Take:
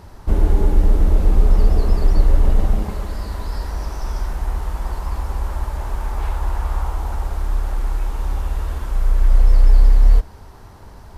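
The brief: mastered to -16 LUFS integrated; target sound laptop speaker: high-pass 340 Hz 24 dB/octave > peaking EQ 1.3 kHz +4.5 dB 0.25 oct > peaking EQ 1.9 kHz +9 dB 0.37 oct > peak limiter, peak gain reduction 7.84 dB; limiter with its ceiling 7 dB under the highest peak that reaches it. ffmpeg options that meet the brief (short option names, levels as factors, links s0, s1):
-af "alimiter=limit=0.355:level=0:latency=1,highpass=f=340:w=0.5412,highpass=f=340:w=1.3066,equalizer=f=1300:t=o:w=0.25:g=4.5,equalizer=f=1900:t=o:w=0.37:g=9,volume=10.6,alimiter=limit=0.473:level=0:latency=1"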